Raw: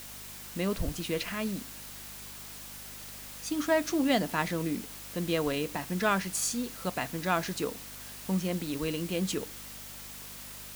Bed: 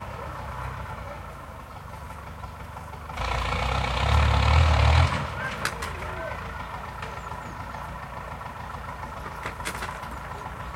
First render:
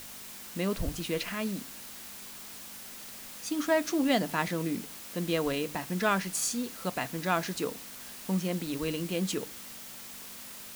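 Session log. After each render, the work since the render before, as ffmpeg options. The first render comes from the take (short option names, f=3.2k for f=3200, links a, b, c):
-af "bandreject=f=50:t=h:w=4,bandreject=f=100:t=h:w=4,bandreject=f=150:t=h:w=4"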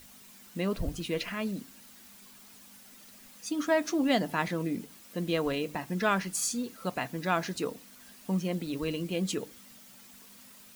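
-af "afftdn=nr=10:nf=-45"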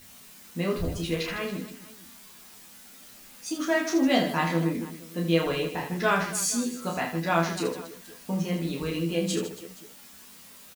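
-filter_complex "[0:a]asplit=2[a][b];[b]adelay=12,volume=-3dB[c];[a][c]amix=inputs=2:normalize=0,aecho=1:1:30|78|154.8|277.7|474.3:0.631|0.398|0.251|0.158|0.1"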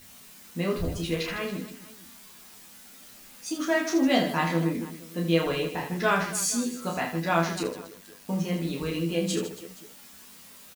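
-filter_complex "[0:a]asettb=1/sr,asplit=3[a][b][c];[a]atrim=end=7.634[d];[b]atrim=start=7.63:end=8.29,asetpts=PTS-STARTPTS,afade=t=in:d=0.004:c=qsin,afade=t=out:st=0.656:d=0.004:c=qsin,tremolo=f=100:d=0.571[e];[c]atrim=start=8.286[f];[d][e]acrossfade=d=0.004:c1=hsin:c2=qsin[g];[g][f]acrossfade=d=0.004:c1=qsin:c2=hsin"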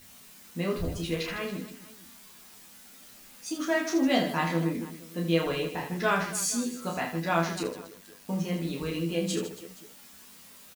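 -af "volume=-2dB"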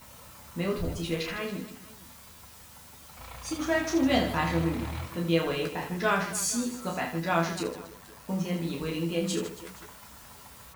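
-filter_complex "[1:a]volume=-17.5dB[a];[0:a][a]amix=inputs=2:normalize=0"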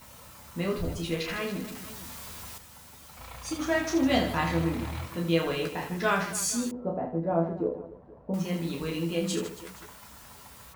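-filter_complex "[0:a]asettb=1/sr,asplit=3[a][b][c];[a]atrim=end=1.294[d];[b]atrim=start=1.29:end=2.58,asetpts=PTS-STARTPTS,afade=t=in:d=0.004:c=qsin,afade=t=out:st=1.286:d=0.004:c=qsin,aeval=exprs='val(0)+0.5*0.01*sgn(val(0))':c=same[e];[c]atrim=start=2.576[f];[d][e]acrossfade=d=0.004:c1=hsin:c2=qsin[g];[g][f]acrossfade=d=0.004:c1=qsin:c2=hsin,asettb=1/sr,asplit=3[h][i][j];[h]atrim=end=6.714[k];[i]atrim=start=6.71:end=8.34,asetpts=PTS-STARTPTS,afade=t=in:d=0.004:c=qsin,afade=t=out:st=1.626:d=0.004:c=qsin,lowpass=f=550:t=q:w=1.8[l];[j]atrim=start=8.336[m];[k][l]acrossfade=d=0.004:c1=hsin:c2=qsin[n];[n][m]acrossfade=d=0.004:c1=qsin:c2=hsin"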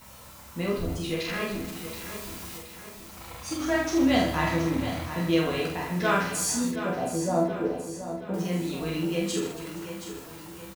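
-filter_complex "[0:a]asplit=2[a][b];[b]adelay=45,volume=-3.5dB[c];[a][c]amix=inputs=2:normalize=0,aecho=1:1:724|1448|2172|2896|3620:0.299|0.14|0.0659|0.031|0.0146"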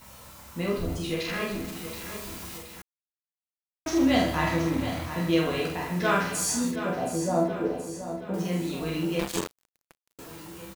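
-filter_complex "[0:a]asettb=1/sr,asplit=3[a][b][c];[a]atrim=end=9.194[d];[b]atrim=start=9.19:end=10.19,asetpts=PTS-STARTPTS,afade=t=in:d=0.004:c=qsin,afade=t=out:st=0.996:d=0.004:c=qsin,acrusher=bits=3:mix=0:aa=0.5[e];[c]atrim=start=10.186[f];[d][e]acrossfade=d=0.004:c1=hsin:c2=qsin[g];[g][f]acrossfade=d=0.004:c1=qsin:c2=hsin,asplit=3[h][i][j];[h]atrim=end=2.82,asetpts=PTS-STARTPTS,afade=t=out:st=2.816:d=0.004:c=hsin[k];[i]atrim=start=2.82:end=3.86,asetpts=PTS-STARTPTS,volume=0[l];[j]atrim=start=3.86,asetpts=PTS-STARTPTS,afade=t=in:d=0.004:c=hsin[m];[k][l][m]concat=n=3:v=0:a=1"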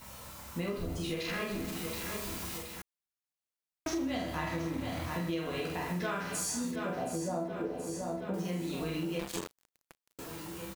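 -af "acompressor=threshold=-32dB:ratio=6"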